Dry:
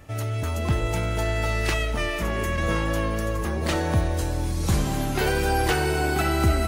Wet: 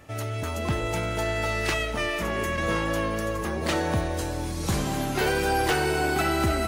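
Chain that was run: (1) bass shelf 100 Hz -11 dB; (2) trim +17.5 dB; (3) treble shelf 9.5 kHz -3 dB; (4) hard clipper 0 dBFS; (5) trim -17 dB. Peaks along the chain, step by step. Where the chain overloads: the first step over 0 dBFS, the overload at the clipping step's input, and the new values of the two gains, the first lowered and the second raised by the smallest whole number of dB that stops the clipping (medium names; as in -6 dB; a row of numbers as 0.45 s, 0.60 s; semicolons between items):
-10.5 dBFS, +7.0 dBFS, +7.0 dBFS, 0.0 dBFS, -17.0 dBFS; step 2, 7.0 dB; step 2 +10.5 dB, step 5 -10 dB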